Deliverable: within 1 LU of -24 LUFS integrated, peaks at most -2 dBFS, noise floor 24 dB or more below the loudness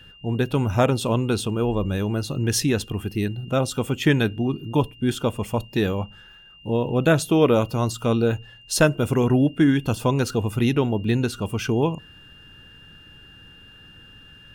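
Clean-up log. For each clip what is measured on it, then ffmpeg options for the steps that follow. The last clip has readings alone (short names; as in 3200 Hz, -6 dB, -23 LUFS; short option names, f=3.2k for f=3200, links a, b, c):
steady tone 2800 Hz; tone level -47 dBFS; loudness -22.5 LUFS; peak -4.5 dBFS; loudness target -24.0 LUFS
-> -af "bandreject=f=2.8k:w=30"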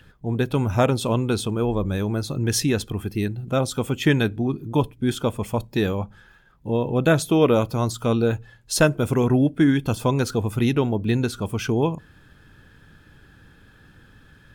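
steady tone none; loudness -22.5 LUFS; peak -4.5 dBFS; loudness target -24.0 LUFS
-> -af "volume=-1.5dB"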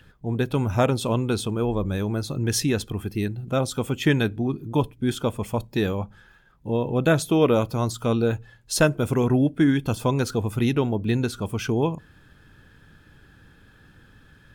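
loudness -24.0 LUFS; peak -6.0 dBFS; noise floor -54 dBFS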